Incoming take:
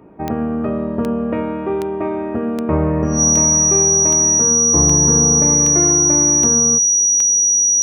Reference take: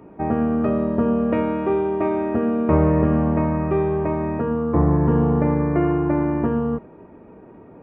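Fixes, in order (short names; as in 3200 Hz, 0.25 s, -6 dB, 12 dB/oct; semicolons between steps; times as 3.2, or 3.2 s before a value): de-click; notch 5800 Hz, Q 30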